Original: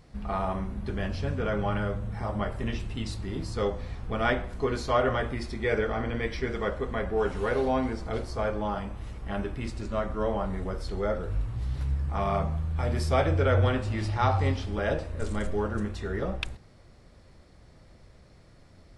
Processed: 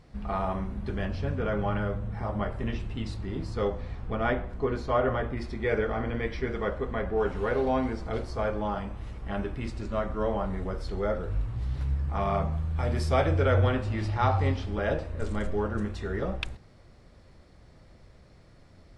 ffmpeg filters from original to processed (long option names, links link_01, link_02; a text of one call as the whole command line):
ffmpeg -i in.wav -af "asetnsamples=nb_out_samples=441:pad=0,asendcmd='1.05 lowpass f 2800;4.15 lowpass f 1500;5.37 lowpass f 2800;7.67 lowpass f 5000;12.53 lowpass f 8100;13.61 lowpass f 4000;15.79 lowpass f 7000',lowpass=frequency=5300:poles=1" out.wav